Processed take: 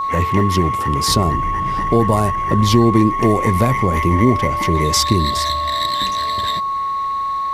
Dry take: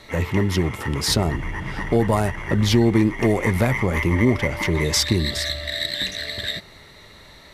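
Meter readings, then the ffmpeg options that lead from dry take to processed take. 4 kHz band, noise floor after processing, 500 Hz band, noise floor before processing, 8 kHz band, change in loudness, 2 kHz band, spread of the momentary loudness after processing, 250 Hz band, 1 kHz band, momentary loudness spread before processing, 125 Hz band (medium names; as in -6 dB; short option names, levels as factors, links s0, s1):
+2.5 dB, -21 dBFS, +3.5 dB, -46 dBFS, +3.5 dB, +5.0 dB, -1.0 dB, 6 LU, +4.0 dB, +15.5 dB, 8 LU, +4.0 dB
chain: -af "adynamicequalizer=threshold=0.01:dfrequency=1700:dqfactor=0.85:tfrequency=1700:tqfactor=0.85:attack=5:release=100:ratio=0.375:range=3:mode=cutabove:tftype=bell,aeval=exprs='val(0)+0.0794*sin(2*PI*1100*n/s)':c=same,volume=1.58"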